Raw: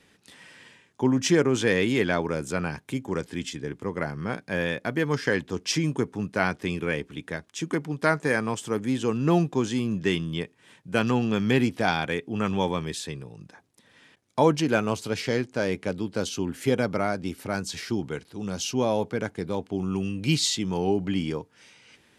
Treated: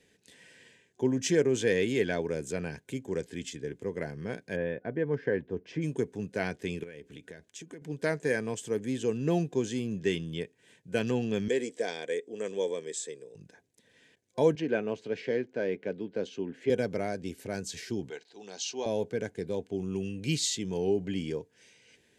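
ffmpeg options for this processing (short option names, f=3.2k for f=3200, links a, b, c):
-filter_complex "[0:a]asplit=3[a][b][c];[a]afade=t=out:st=4.55:d=0.02[d];[b]lowpass=1.5k,afade=t=in:st=4.55:d=0.02,afade=t=out:st=5.81:d=0.02[e];[c]afade=t=in:st=5.81:d=0.02[f];[d][e][f]amix=inputs=3:normalize=0,asettb=1/sr,asplit=3[g][h][i];[g]atrim=end=6.834[j];[h]atrim=start=6.83:end=7.82,asetpts=PTS-STARTPTS,afade=t=in:d=0.004:c=qsin,afade=t=out:st=0.986:d=0.004:c=qsin,acompressor=threshold=-35dB:ratio=16:attack=3.2:release=140:knee=1:detection=peak[k];[i]atrim=start=7.816[l];[j][k]acrossfade=d=0.004:c1=hsin:c2=qsin[m];[m][l]acrossfade=d=0.004:c1=qsin:c2=hsin,asettb=1/sr,asplit=3[n][o][p];[n]atrim=end=11.484[q];[o]atrim=start=11.48:end=13.35,asetpts=PTS-STARTPTS,afade=t=in:d=0.004:c=qsin,afade=t=out:st=1.866:d=0.004:c=qsin,highpass=390,equalizer=f=480:t=q:w=4:g=6,equalizer=f=800:t=q:w=4:g=-9,equalizer=f=1.4k:t=q:w=4:g=-8,equalizer=f=2.7k:t=q:w=4:g=-8,equalizer=f=4.3k:t=q:w=4:g=-5,equalizer=f=7.8k:t=q:w=4:g=9,lowpass=f=9.3k:w=0.5412,lowpass=f=9.3k:w=1.3066[r];[p]atrim=start=13.346[s];[q][r]acrossfade=d=0.004:c1=hsin:c2=qsin[t];[t][s]acrossfade=d=0.004:c1=qsin:c2=hsin,asettb=1/sr,asplit=3[u][v][w];[u]atrim=end=14.554[x];[v]atrim=start=14.55:end=16.7,asetpts=PTS-STARTPTS,afade=t=in:d=0.004:c=qsin,afade=t=out:st=2.146:d=0.004:c=qsin,highpass=180,lowpass=2.6k[y];[w]atrim=start=16.696[z];[x][y]acrossfade=d=0.004:c1=hsin:c2=qsin[aa];[aa][z]acrossfade=d=0.004:c1=qsin:c2=hsin,asettb=1/sr,asplit=3[ab][ac][ad];[ab]atrim=end=18.104[ae];[ac]atrim=start=18.1:end=18.86,asetpts=PTS-STARTPTS,afade=t=in:d=0.004:c=qsin,afade=t=out:st=0.756:d=0.004:c=qsin,highpass=480,equalizer=f=530:t=q:w=4:g=-6,equalizer=f=800:t=q:w=4:g=8,equalizer=f=4.1k:t=q:w=4:g=6,lowpass=f=7.2k:w=0.5412,lowpass=f=7.2k:w=1.3066[af];[ad]atrim=start=18.856[ag];[ae][af]acrossfade=d=0.004:c1=hsin:c2=qsin[ah];[ah][ag]acrossfade=d=0.004:c1=qsin:c2=hsin,superequalizer=7b=1.78:9b=0.501:10b=0.282:15b=1.58,volume=-6.5dB"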